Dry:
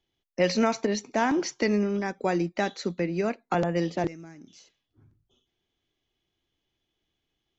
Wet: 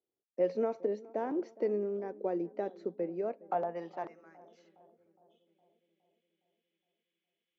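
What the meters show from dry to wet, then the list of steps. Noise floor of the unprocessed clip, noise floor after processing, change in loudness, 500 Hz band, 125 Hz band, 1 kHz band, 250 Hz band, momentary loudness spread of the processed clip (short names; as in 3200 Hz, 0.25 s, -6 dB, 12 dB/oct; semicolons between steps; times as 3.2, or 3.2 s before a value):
-82 dBFS, under -85 dBFS, -8.0 dB, -5.0 dB, -18.0 dB, -9.0 dB, -12.0 dB, 8 LU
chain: band-pass sweep 460 Hz -> 2300 Hz, 3.09–5.04; darkening echo 0.413 s, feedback 64%, low-pass 1000 Hz, level -20 dB; gain -2.5 dB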